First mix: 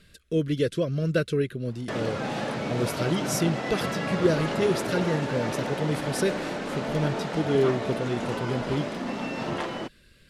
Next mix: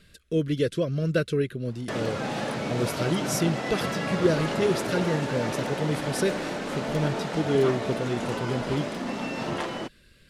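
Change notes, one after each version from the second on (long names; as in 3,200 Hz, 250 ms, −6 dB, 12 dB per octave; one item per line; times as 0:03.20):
background: add high-shelf EQ 7,000 Hz +6.5 dB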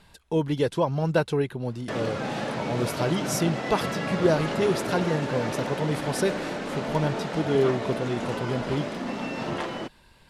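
speech: remove Butterworth band-reject 860 Hz, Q 1.2
background: add high-shelf EQ 7,000 Hz −6.5 dB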